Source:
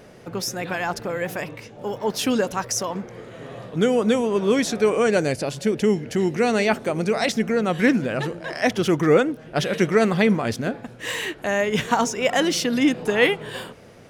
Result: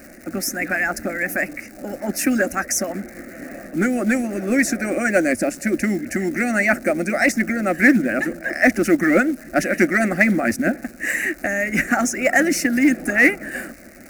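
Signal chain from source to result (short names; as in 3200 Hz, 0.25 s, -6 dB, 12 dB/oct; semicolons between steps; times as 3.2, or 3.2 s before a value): ten-band EQ 250 Hz +3 dB, 1000 Hz -11 dB, 2000 Hz +8 dB, 4000 Hz -11 dB; harmonic-percussive split harmonic -10 dB; in parallel at -3 dB: overloaded stage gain 20 dB; on the sum: crackle 280/s -34 dBFS; fixed phaser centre 660 Hz, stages 8; short-mantissa float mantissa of 4-bit; gain +6 dB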